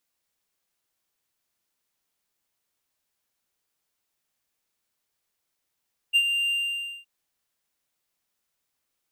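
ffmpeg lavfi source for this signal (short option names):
-f lavfi -i "aevalsrc='0.224*(1-4*abs(mod(2790*t+0.25,1)-0.5))':d=0.918:s=44100,afade=t=in:d=0.029,afade=t=out:st=0.029:d=0.063:silence=0.422,afade=t=out:st=0.37:d=0.548"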